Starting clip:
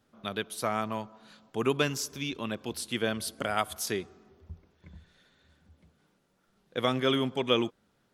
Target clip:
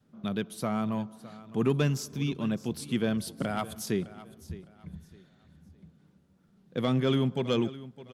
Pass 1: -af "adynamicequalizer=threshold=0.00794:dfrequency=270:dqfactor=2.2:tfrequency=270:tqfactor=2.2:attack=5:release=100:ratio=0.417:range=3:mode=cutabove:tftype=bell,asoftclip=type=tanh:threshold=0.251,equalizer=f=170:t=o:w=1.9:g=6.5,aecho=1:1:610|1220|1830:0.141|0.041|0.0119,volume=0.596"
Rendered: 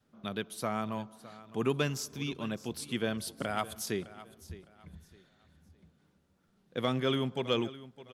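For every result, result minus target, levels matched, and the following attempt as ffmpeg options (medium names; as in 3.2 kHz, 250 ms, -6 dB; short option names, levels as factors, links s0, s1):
saturation: distortion -9 dB; 125 Hz band -3.5 dB
-af "adynamicequalizer=threshold=0.00794:dfrequency=270:dqfactor=2.2:tfrequency=270:tqfactor=2.2:attack=5:release=100:ratio=0.417:range=3:mode=cutabove:tftype=bell,asoftclip=type=tanh:threshold=0.126,equalizer=f=170:t=o:w=1.9:g=6.5,aecho=1:1:610|1220|1830:0.141|0.041|0.0119,volume=0.596"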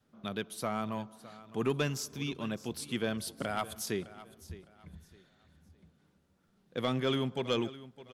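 125 Hz band -3.5 dB
-af "adynamicequalizer=threshold=0.00794:dfrequency=270:dqfactor=2.2:tfrequency=270:tqfactor=2.2:attack=5:release=100:ratio=0.417:range=3:mode=cutabove:tftype=bell,asoftclip=type=tanh:threshold=0.126,equalizer=f=170:t=o:w=1.9:g=16,aecho=1:1:610|1220|1830:0.141|0.041|0.0119,volume=0.596"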